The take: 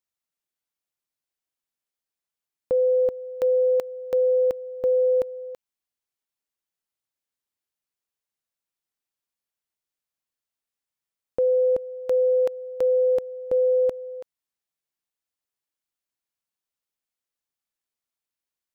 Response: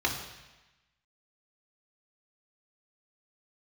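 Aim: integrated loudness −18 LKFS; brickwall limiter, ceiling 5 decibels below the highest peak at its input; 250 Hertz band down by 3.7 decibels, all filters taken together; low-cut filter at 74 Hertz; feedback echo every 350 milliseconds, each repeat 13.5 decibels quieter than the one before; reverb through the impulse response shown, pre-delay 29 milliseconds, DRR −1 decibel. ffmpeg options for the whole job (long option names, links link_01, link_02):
-filter_complex "[0:a]highpass=74,equalizer=frequency=250:width_type=o:gain=-5.5,alimiter=limit=-22dB:level=0:latency=1,aecho=1:1:350|700:0.211|0.0444,asplit=2[link_01][link_02];[1:a]atrim=start_sample=2205,adelay=29[link_03];[link_02][link_03]afir=irnorm=-1:irlink=0,volume=-9dB[link_04];[link_01][link_04]amix=inputs=2:normalize=0,volume=6dB"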